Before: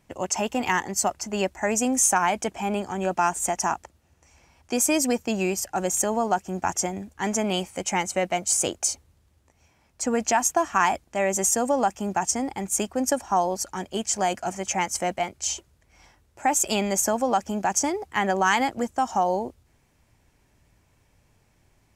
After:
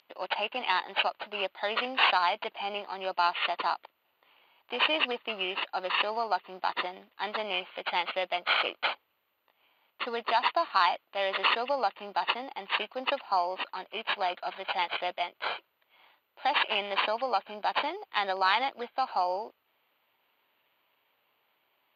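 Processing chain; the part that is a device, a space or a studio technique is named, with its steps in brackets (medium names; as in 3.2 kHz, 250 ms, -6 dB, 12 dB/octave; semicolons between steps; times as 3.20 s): toy sound module (decimation joined by straight lines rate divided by 8×; class-D stage that switches slowly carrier 14 kHz; cabinet simulation 740–4700 Hz, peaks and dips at 750 Hz -3 dB, 1.7 kHz -5 dB, 2.9 kHz +7 dB, 4.4 kHz +10 dB)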